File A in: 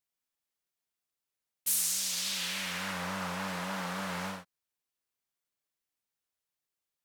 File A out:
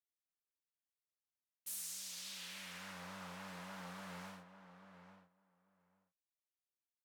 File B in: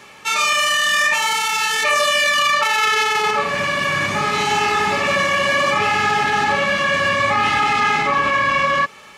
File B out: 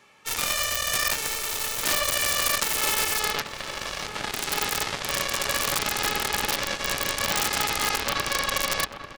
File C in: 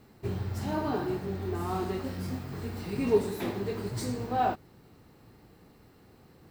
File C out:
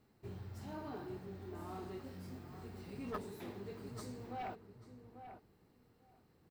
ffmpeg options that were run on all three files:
-filter_complex "[0:a]aeval=exprs='(mod(2.82*val(0)+1,2)-1)/2.82':c=same,aeval=exprs='0.355*(cos(1*acos(clip(val(0)/0.355,-1,1)))-cos(1*PI/2))+0.158*(cos(3*acos(clip(val(0)/0.355,-1,1)))-cos(3*PI/2))':c=same,asplit=2[a][b];[b]adelay=842,lowpass=f=1.6k:p=1,volume=-9dB,asplit=2[c][d];[d]adelay=842,lowpass=f=1.6k:p=1,volume=0.15[e];[a][c][e]amix=inputs=3:normalize=0,volume=-4.5dB"

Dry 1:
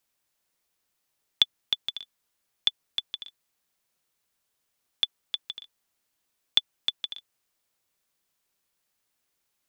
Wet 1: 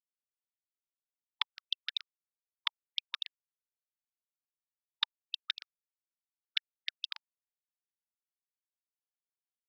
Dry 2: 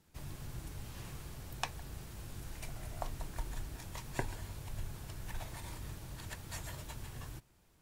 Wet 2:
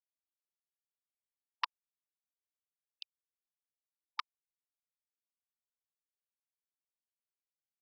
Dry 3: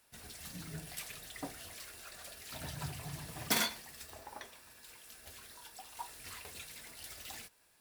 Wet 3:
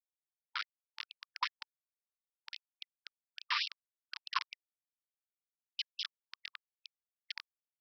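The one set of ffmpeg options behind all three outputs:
-filter_complex "[0:a]afftfilt=real='re*lt(hypot(re,im),0.501)':imag='im*lt(hypot(re,im),0.501)':win_size=1024:overlap=0.75,aemphasis=mode=reproduction:type=riaa,acompressor=threshold=-40dB:ratio=5,highpass=f=230:t=q:w=0.5412,highpass=f=230:t=q:w=1.307,lowpass=f=3.2k:t=q:w=0.5176,lowpass=f=3.2k:t=q:w=0.7071,lowpass=f=3.2k:t=q:w=1.932,afreqshift=240,aphaser=in_gain=1:out_gain=1:delay=1.5:decay=0.47:speed=1.6:type=triangular,asplit=2[a][b];[b]adelay=164,lowpass=f=1.2k:p=1,volume=-9.5dB,asplit=2[c][d];[d]adelay=164,lowpass=f=1.2k:p=1,volume=0.45,asplit=2[e][f];[f]adelay=164,lowpass=f=1.2k:p=1,volume=0.45,asplit=2[g][h];[h]adelay=164,lowpass=f=1.2k:p=1,volume=0.45,asplit=2[i][j];[j]adelay=164,lowpass=f=1.2k:p=1,volume=0.45[k];[a][c][e][g][i][k]amix=inputs=6:normalize=0,aresample=11025,acrusher=bits=6:mix=0:aa=0.000001,aresample=44100,afftfilt=real='re*gte(b*sr/1024,870*pow(2700/870,0.5+0.5*sin(2*PI*4.7*pts/sr)))':imag='im*gte(b*sr/1024,870*pow(2700/870,0.5+0.5*sin(2*PI*4.7*pts/sr)))':win_size=1024:overlap=0.75,volume=13.5dB"

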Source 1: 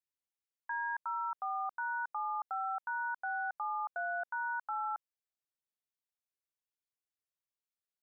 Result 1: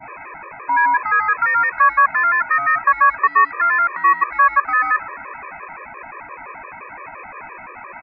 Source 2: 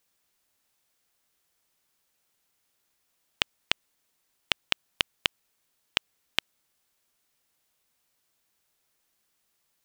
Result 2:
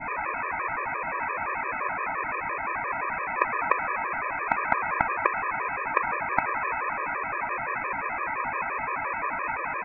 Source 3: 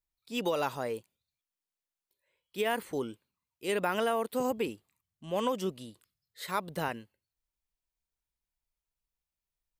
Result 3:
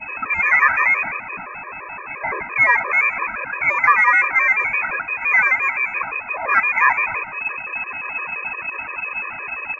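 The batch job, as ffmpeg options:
-filter_complex "[0:a]aeval=exprs='val(0)+0.5*0.0631*sgn(val(0))':c=same,lowpass=f=2.2k:t=q:w=0.5098,lowpass=f=2.2k:t=q:w=0.6013,lowpass=f=2.2k:t=q:w=0.9,lowpass=f=2.2k:t=q:w=2.563,afreqshift=-2600,asplit=2[a][b];[b]asoftclip=type=tanh:threshold=-20dB,volume=-12dB[c];[a][c]amix=inputs=2:normalize=0,equalizer=f=1k:t=o:w=0.54:g=9,asplit=5[d][e][f][g][h];[e]adelay=135,afreqshift=61,volume=-22dB[i];[f]adelay=270,afreqshift=122,volume=-27.5dB[j];[g]adelay=405,afreqshift=183,volume=-33dB[k];[h]adelay=540,afreqshift=244,volume=-38.5dB[l];[d][i][j][k][l]amix=inputs=5:normalize=0,adynamicequalizer=threshold=0.0178:dfrequency=1400:dqfactor=1.1:tfrequency=1400:tqfactor=1.1:attack=5:release=100:ratio=0.375:range=2:mode=boostabove:tftype=bell,afftfilt=real='re*gt(sin(2*PI*5.8*pts/sr)*(1-2*mod(floor(b*sr/1024/320),2)),0)':imag='im*gt(sin(2*PI*5.8*pts/sr)*(1-2*mod(floor(b*sr/1024/320),2)),0)':win_size=1024:overlap=0.75,volume=7.5dB"

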